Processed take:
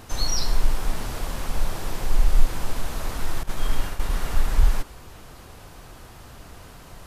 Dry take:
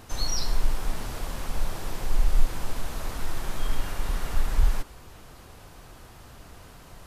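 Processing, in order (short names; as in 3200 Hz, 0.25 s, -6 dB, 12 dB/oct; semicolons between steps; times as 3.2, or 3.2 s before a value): 3.43–4.12 expander -23 dBFS; gain +3.5 dB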